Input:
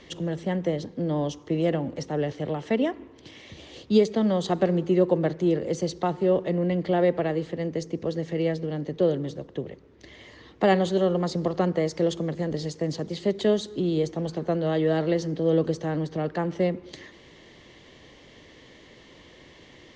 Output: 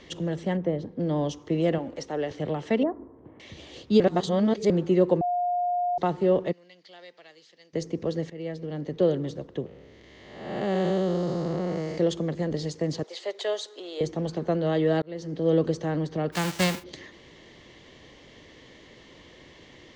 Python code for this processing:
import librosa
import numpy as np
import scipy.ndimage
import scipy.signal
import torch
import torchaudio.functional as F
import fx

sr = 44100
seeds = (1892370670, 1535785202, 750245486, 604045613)

y = fx.lowpass(x, sr, hz=1100.0, slope=6, at=(0.57, 1.0))
y = fx.peak_eq(y, sr, hz=140.0, db=-11.0, octaves=1.5, at=(1.78, 2.31))
y = fx.lowpass(y, sr, hz=1200.0, slope=24, at=(2.83, 3.4))
y = fx.bandpass_q(y, sr, hz=5200.0, q=2.3, at=(6.51, 7.73), fade=0.02)
y = fx.spec_blur(y, sr, span_ms=388.0, at=(9.66, 11.98))
y = fx.highpass(y, sr, hz=530.0, slope=24, at=(13.03, 14.01))
y = fx.envelope_flatten(y, sr, power=0.3, at=(16.32, 16.82), fade=0.02)
y = fx.edit(y, sr, fx.reverse_span(start_s=4.0, length_s=0.7),
    fx.bleep(start_s=5.21, length_s=0.77, hz=711.0, db=-23.0),
    fx.fade_in_from(start_s=8.3, length_s=0.69, floor_db=-15.0),
    fx.fade_in_span(start_s=15.02, length_s=0.47), tone=tone)